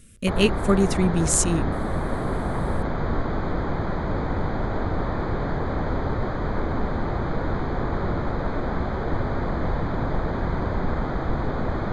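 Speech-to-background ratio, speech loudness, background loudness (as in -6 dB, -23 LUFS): 5.0 dB, -22.5 LUFS, -27.5 LUFS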